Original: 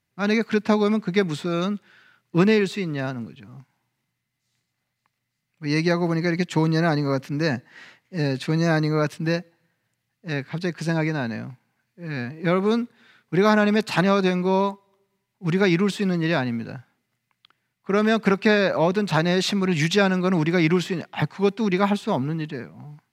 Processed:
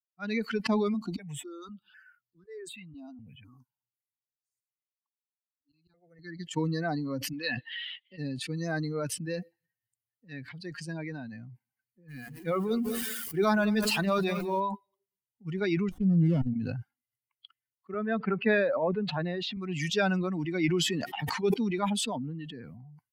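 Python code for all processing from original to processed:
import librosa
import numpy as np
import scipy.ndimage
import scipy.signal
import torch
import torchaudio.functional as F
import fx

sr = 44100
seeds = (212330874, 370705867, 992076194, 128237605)

y = fx.chain(x, sr, fx.highpass(hz=100.0, slope=12),
    fx.auto_swell(attack_ms=506.0),
    fx.phaser_held(hz=4.0, low_hz=490.0, high_hz=2500.0), at=(0.94, 6.44))
y = fx.chain(y, sr, fx.lowpass_res(hz=3400.0, q=4.7),
    fx.low_shelf(hz=250.0, db=-11.0), at=(7.33, 8.18))
y = fx.chain(y, sr, fx.zero_step(step_db=-30.5),
    fx.hum_notches(base_hz=60, count=8),
    fx.echo_feedback(ms=200, feedback_pct=39, wet_db=-11), at=(12.08, 14.6))
y = fx.chain(y, sr, fx.level_steps(step_db=24),
    fx.peak_eq(hz=140.0, db=10.0, octaves=2.5),
    fx.running_max(window=17), at=(15.89, 16.56))
y = fx.chain(y, sr, fx.lowpass(hz=3000.0, slope=12),
    fx.band_widen(depth_pct=70), at=(17.94, 19.57))
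y = fx.chain(y, sr, fx.highpass(hz=120.0, slope=12),
    fx.sustainer(db_per_s=36.0), at=(21.04, 21.54))
y = fx.bin_expand(y, sr, power=2.0)
y = fx.sustainer(y, sr, db_per_s=23.0)
y = y * 10.0 ** (-5.0 / 20.0)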